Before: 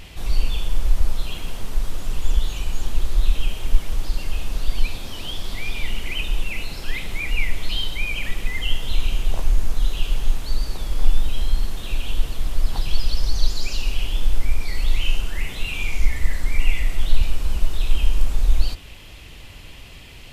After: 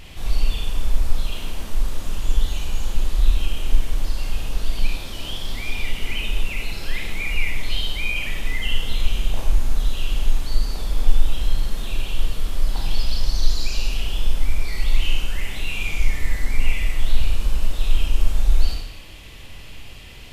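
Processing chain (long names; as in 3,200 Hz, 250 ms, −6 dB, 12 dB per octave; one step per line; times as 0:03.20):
four-comb reverb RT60 0.87 s, combs from 28 ms, DRR 0.5 dB
level −2 dB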